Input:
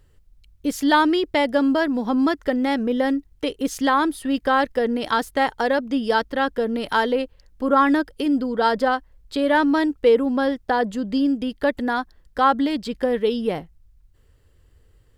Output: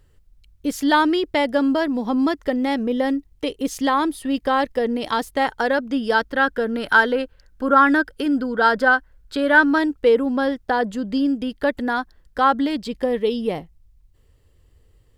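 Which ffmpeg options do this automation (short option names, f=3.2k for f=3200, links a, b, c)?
-af "asetnsamples=n=441:p=0,asendcmd='1.76 equalizer g -5.5;5.45 equalizer g 5.5;6.37 equalizer g 13;9.78 equalizer g 2.5;12.83 equalizer g -8',equalizer=f=1.5k:t=o:w=0.28:g=0.5"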